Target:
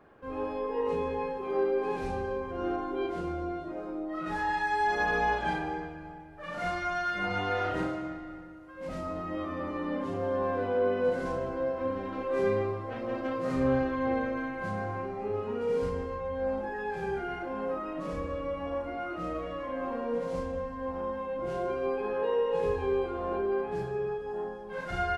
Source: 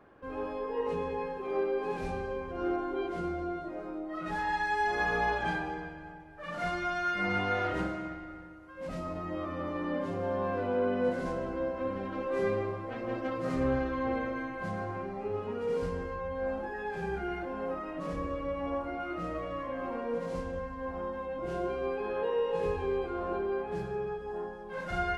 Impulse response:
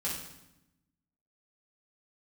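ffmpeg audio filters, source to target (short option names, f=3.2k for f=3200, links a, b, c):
-filter_complex "[0:a]asplit=2[a][b];[b]adelay=38,volume=-6.5dB[c];[a][c]amix=inputs=2:normalize=0"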